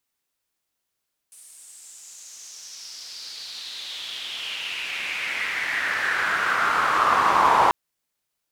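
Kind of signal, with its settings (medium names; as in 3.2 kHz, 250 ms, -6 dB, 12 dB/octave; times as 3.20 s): swept filtered noise pink, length 6.39 s bandpass, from 9.4 kHz, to 930 Hz, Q 4.5, exponential, gain ramp +30 dB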